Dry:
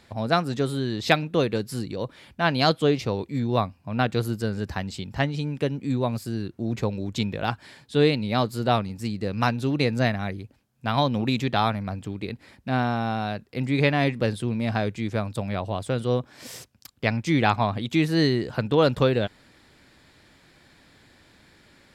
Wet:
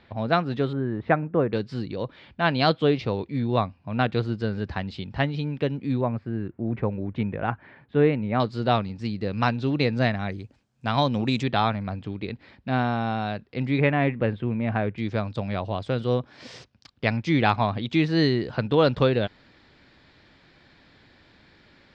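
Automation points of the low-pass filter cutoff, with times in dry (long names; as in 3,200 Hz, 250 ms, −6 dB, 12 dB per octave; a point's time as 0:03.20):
low-pass filter 24 dB per octave
3,700 Hz
from 0:00.73 1,700 Hz
from 0:01.53 4,200 Hz
from 0:06.01 2,200 Hz
from 0:08.40 4,700 Hz
from 0:10.29 7,800 Hz
from 0:11.43 4,400 Hz
from 0:13.78 2,600 Hz
from 0:14.98 5,000 Hz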